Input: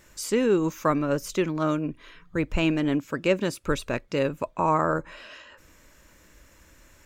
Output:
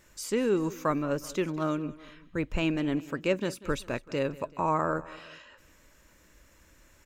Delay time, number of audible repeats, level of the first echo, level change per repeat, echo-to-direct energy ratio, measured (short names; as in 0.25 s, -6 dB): 0.191 s, 2, -19.0 dB, -5.0 dB, -18.0 dB